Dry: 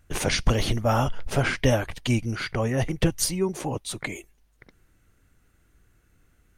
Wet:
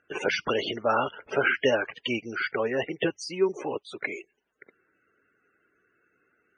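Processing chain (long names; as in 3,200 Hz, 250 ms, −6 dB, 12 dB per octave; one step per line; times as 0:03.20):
spectral peaks only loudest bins 64
loudspeaker in its box 360–5,200 Hz, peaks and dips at 410 Hz +7 dB, 730 Hz −4 dB, 1,500 Hz +6 dB, 2,800 Hz +6 dB, 4,000 Hz −9 dB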